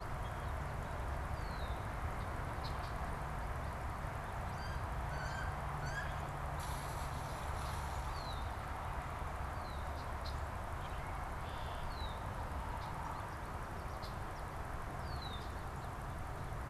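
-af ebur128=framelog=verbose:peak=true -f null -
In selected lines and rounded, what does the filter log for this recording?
Integrated loudness:
  I:         -43.2 LUFS
  Threshold: -53.2 LUFS
Loudness range:
  LRA:         2.2 LU
  Threshold: -63.1 LUFS
  LRA low:   -44.3 LUFS
  LRA high:  -42.1 LUFS
True peak:
  Peak:      -28.5 dBFS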